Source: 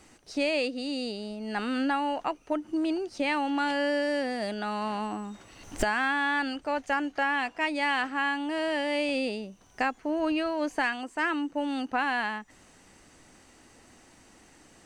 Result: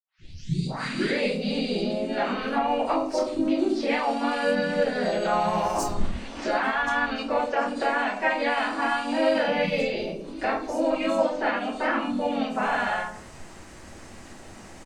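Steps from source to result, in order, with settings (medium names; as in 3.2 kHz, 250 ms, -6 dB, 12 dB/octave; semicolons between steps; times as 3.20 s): tape start-up on the opening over 0.57 s; dynamic bell 5.6 kHz, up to +7 dB, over -60 dBFS, Q 3.3; compression 12:1, threshold -32 dBFS, peak gain reduction 12 dB; three bands offset in time highs, lows, mids 180/630 ms, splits 250/4900 Hz; reverberation RT60 0.65 s, pre-delay 5 ms, DRR -9 dB; harmony voices -3 st -2 dB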